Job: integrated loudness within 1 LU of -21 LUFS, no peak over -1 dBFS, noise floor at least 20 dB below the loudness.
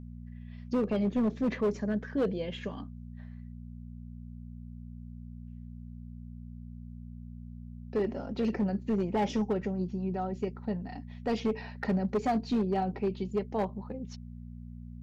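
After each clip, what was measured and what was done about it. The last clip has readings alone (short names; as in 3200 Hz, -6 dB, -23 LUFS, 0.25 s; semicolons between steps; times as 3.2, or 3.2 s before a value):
clipped 1.6%; flat tops at -23.0 dBFS; hum 60 Hz; harmonics up to 240 Hz; hum level -42 dBFS; loudness -32.0 LUFS; peak -23.0 dBFS; loudness target -21.0 LUFS
-> clip repair -23 dBFS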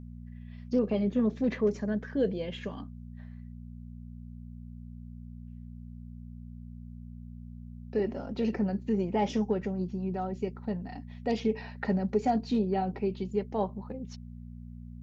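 clipped 0.0%; hum 60 Hz; harmonics up to 240 Hz; hum level -42 dBFS
-> de-hum 60 Hz, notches 4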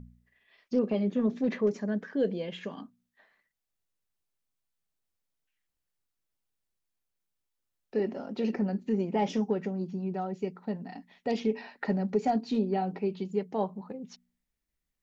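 hum none; loudness -31.5 LUFS; peak -16.0 dBFS; loudness target -21.0 LUFS
-> gain +10.5 dB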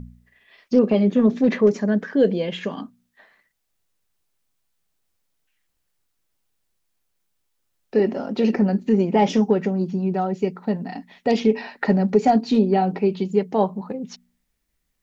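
loudness -21.0 LUFS; peak -5.5 dBFS; noise floor -74 dBFS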